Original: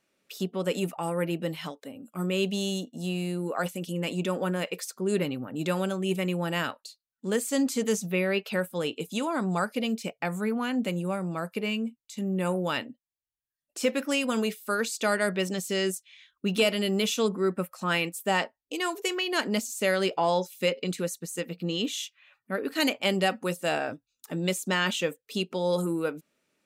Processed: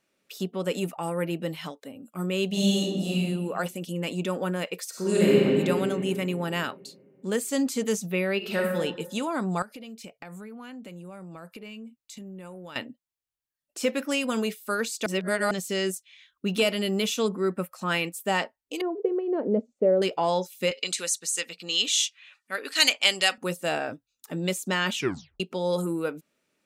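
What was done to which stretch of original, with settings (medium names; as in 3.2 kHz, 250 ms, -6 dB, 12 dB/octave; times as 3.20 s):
2.47–3.14 s: reverb throw, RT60 1.3 s, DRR -5 dB
4.89–5.39 s: reverb throw, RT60 2.8 s, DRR -8 dB
8.37–8.78 s: reverb throw, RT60 0.92 s, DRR -1 dB
9.62–12.76 s: compression 12:1, threshold -38 dBFS
15.06–15.51 s: reverse
18.81–20.02 s: resonant low-pass 490 Hz, resonance Q 3
20.71–23.38 s: frequency weighting ITU-R 468
24.95 s: tape stop 0.45 s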